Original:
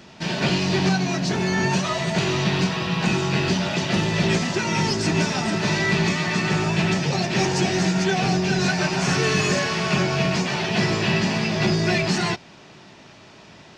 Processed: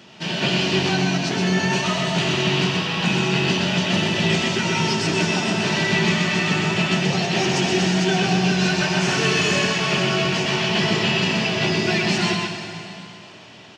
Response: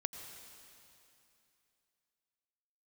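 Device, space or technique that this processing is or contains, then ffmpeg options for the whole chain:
PA in a hall: -filter_complex "[0:a]highpass=110,equalizer=frequency=3000:width_type=o:width=0.36:gain=7.5,aecho=1:1:126:0.596[link_01];[1:a]atrim=start_sample=2205[link_02];[link_01][link_02]afir=irnorm=-1:irlink=0"

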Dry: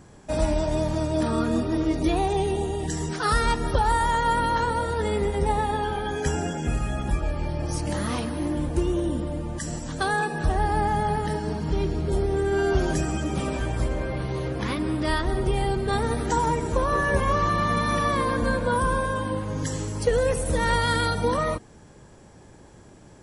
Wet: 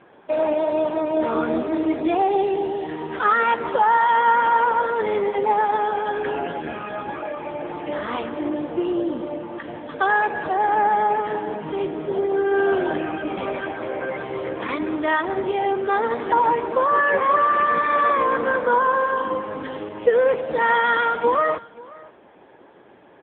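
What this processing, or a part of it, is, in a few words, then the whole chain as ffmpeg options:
satellite phone: -filter_complex "[0:a]asettb=1/sr,asplit=3[link_01][link_02][link_03];[link_01]atrim=end=17.474[link_04];[link_02]atrim=start=17.47:end=19.52,asetpts=PTS-STARTPTS,afade=type=in:duration=0.004:curve=qsin,afade=type=out:start_time=2.046:duration=0.004:curve=qsin,adynamicequalizer=threshold=0.00178:dfrequency=4100:dqfactor=4.2:tfrequency=4100:tqfactor=4.2:attack=5:release=100:ratio=0.375:range=2:mode=cutabove:tftype=bell[link_05];[link_03]atrim=start=19.516[link_06];[link_04][link_05]acrossfade=duration=0.004:curve1=hsin:curve2=qsin[link_07];[link_07][link_06]acrossfade=duration=0.004:curve1=qsin:curve2=hsin,highpass=380,lowpass=3300,aecho=1:1:533:0.0841,volume=7.5dB" -ar 8000 -c:a libopencore_amrnb -b:a 6700

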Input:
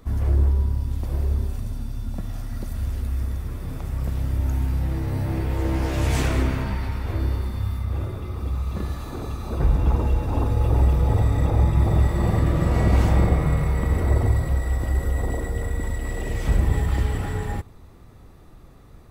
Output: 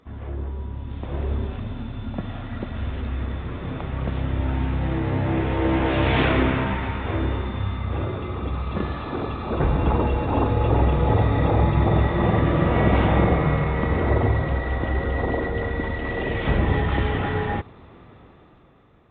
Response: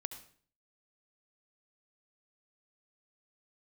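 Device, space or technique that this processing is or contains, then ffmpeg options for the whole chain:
Bluetooth headset: -af "highpass=frequency=210:poles=1,dynaudnorm=framelen=220:gausssize=9:maxgain=11dB,aresample=8000,aresample=44100,volume=-3dB" -ar 16000 -c:a sbc -b:a 64k

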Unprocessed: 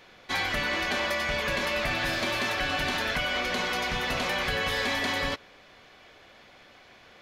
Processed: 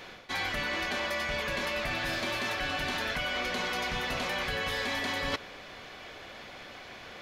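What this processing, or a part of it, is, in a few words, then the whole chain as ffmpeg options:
compression on the reversed sound: -af "areverse,acompressor=threshold=-37dB:ratio=10,areverse,volume=7.5dB"

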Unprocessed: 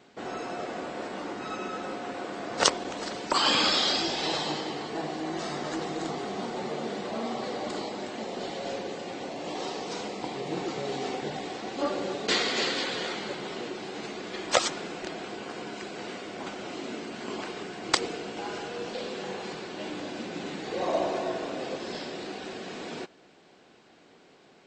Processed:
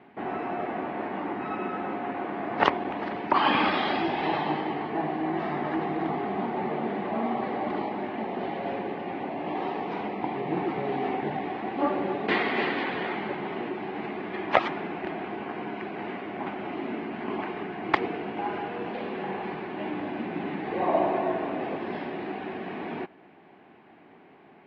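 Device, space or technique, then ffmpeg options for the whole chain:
bass cabinet: -af "highpass=73,equalizer=frequency=130:width_type=q:width=4:gain=-3,equalizer=frequency=510:width_type=q:width=4:gain=-9,equalizer=frequency=1400:width_type=q:width=4:gain=-6,lowpass=frequency=2300:width=0.5412,lowpass=frequency=2300:width=1.3066,equalizer=frequency=830:width=6.6:gain=3.5,volume=5.5dB"

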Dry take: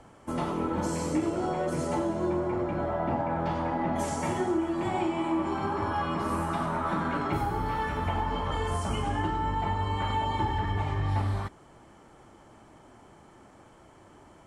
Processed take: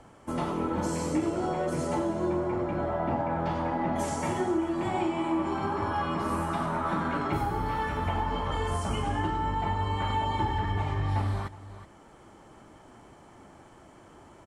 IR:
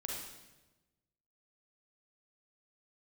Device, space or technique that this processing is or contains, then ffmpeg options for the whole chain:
ducked delay: -filter_complex "[0:a]asplit=3[link_01][link_02][link_03];[link_02]adelay=369,volume=-3.5dB[link_04];[link_03]apad=whole_len=654033[link_05];[link_04][link_05]sidechaincompress=threshold=-45dB:ratio=12:attack=16:release=644[link_06];[link_01][link_06]amix=inputs=2:normalize=0"

